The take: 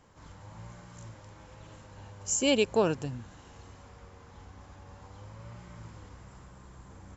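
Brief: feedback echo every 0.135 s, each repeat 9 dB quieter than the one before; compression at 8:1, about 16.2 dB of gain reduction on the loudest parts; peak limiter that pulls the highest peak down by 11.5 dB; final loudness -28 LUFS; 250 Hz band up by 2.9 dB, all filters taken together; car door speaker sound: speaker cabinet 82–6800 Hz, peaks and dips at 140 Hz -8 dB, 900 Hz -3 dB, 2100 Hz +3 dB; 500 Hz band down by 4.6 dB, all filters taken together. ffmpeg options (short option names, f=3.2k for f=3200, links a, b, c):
-af "equalizer=f=250:t=o:g=6,equalizer=f=500:t=o:g=-7,acompressor=threshold=-38dB:ratio=8,alimiter=level_in=15.5dB:limit=-24dB:level=0:latency=1,volume=-15.5dB,highpass=82,equalizer=f=140:t=q:w=4:g=-8,equalizer=f=900:t=q:w=4:g=-3,equalizer=f=2.1k:t=q:w=4:g=3,lowpass=f=6.8k:w=0.5412,lowpass=f=6.8k:w=1.3066,aecho=1:1:135|270|405|540:0.355|0.124|0.0435|0.0152,volume=23.5dB"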